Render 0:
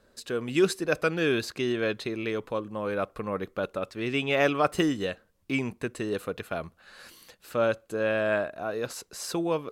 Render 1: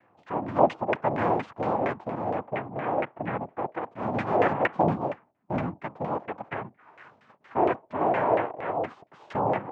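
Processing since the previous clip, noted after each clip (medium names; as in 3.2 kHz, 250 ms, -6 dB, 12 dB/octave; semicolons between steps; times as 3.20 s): noise-vocoded speech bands 4; LFO low-pass saw down 4.3 Hz 580–2100 Hz; harmonic-percussive split percussive -6 dB; trim +2 dB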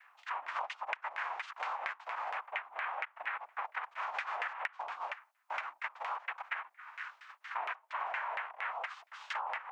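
high-pass 1.2 kHz 24 dB/octave; compression 10:1, threshold -43 dBFS, peak gain reduction 20.5 dB; trim +8.5 dB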